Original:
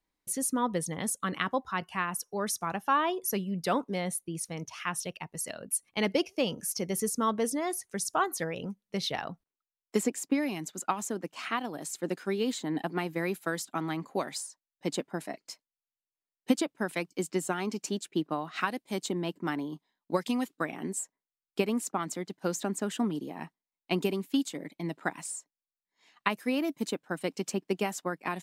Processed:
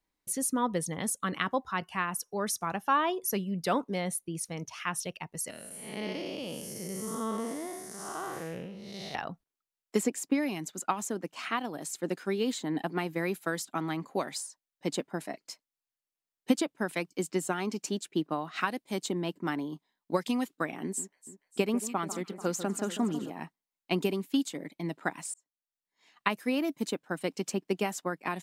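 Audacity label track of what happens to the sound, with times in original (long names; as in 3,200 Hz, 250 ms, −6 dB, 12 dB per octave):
5.500000	9.150000	spectrum smeared in time width 271 ms
20.830000	23.300000	delay that swaps between a low-pass and a high-pass 146 ms, split 1,700 Hz, feedback 73%, level −12 dB
25.340000	26.280000	fade in equal-power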